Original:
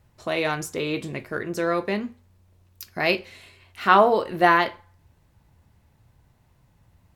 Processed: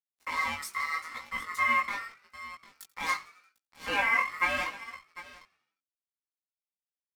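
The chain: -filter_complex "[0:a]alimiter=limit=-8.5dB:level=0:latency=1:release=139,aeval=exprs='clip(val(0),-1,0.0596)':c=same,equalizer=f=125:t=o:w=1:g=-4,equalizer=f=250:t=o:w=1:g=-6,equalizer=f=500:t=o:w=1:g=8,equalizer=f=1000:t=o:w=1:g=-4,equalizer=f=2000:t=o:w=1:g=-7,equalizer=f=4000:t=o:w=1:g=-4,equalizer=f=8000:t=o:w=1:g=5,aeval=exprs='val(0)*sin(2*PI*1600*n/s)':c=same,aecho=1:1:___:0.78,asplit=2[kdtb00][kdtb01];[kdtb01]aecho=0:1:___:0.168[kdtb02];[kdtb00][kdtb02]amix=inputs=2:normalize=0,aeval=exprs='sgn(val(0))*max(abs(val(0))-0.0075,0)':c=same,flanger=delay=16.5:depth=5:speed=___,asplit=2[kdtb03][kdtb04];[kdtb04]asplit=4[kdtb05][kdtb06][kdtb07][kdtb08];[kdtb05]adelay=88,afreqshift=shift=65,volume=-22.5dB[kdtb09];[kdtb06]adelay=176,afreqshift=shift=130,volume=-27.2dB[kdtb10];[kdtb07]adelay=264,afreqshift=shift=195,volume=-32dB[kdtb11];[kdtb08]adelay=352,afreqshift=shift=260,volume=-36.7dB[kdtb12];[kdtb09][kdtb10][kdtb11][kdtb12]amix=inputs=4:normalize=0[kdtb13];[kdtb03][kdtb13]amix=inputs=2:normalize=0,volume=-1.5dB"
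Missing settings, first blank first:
3.8, 750, 0.81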